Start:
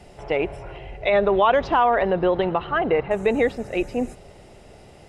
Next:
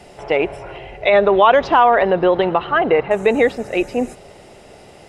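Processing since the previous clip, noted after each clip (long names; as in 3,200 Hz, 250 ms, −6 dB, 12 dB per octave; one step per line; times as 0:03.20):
low-shelf EQ 140 Hz −11 dB
level +6.5 dB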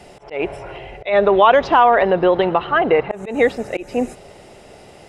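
volume swells 171 ms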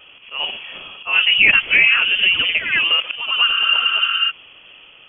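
healed spectral selection 0:03.52–0:04.28, 220–2,200 Hz before
delay with pitch and tempo change per echo 84 ms, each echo +1 semitone, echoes 2, each echo −6 dB
voice inversion scrambler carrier 3,300 Hz
level −2.5 dB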